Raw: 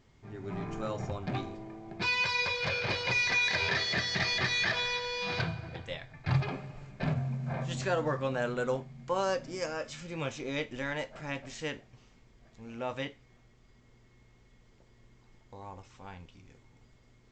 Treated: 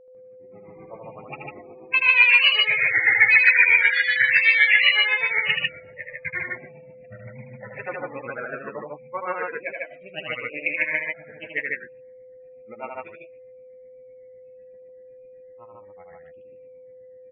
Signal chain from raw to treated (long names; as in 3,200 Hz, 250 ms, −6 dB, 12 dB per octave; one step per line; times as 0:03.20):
fade in at the beginning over 1.08 s
in parallel at −10.5 dB: soft clipping −27 dBFS, distortion −14 dB
on the sum: low-pass with resonance 2,200 Hz, resonance Q 6.2
granular cloud 107 ms, grains 7.9 per second, pitch spread up and down by 3 semitones
spectral peaks only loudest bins 32
low-shelf EQ 87 Hz −10 dB
low-pass that shuts in the quiet parts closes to 490 Hz, open at −22.5 dBFS
spectral tilt +3 dB per octave
steady tone 510 Hz −51 dBFS
on a send: loudspeakers that aren't time-aligned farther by 27 metres −4 dB, 51 metres −1 dB
on the sum: level +2 dB